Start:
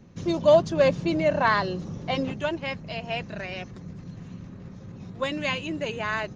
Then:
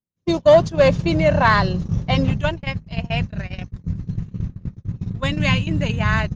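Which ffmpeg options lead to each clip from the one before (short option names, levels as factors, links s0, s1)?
-af "asubboost=boost=12:cutoff=120,acontrast=89,agate=range=0.00316:threshold=0.112:ratio=16:detection=peak"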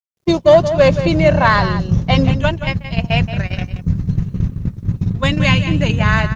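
-filter_complex "[0:a]asplit=2[s0][s1];[s1]adelay=174.9,volume=0.282,highshelf=f=4000:g=-3.94[s2];[s0][s2]amix=inputs=2:normalize=0,acrusher=bits=11:mix=0:aa=0.000001,dynaudnorm=f=140:g=3:m=2.66"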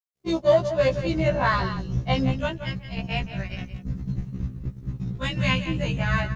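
-af "afftfilt=real='re*1.73*eq(mod(b,3),0)':imag='im*1.73*eq(mod(b,3),0)':win_size=2048:overlap=0.75,volume=0.422"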